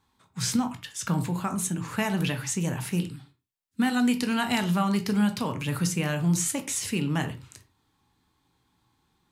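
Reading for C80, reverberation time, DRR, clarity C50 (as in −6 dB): 19.0 dB, non-exponential decay, 7.0 dB, 13.0 dB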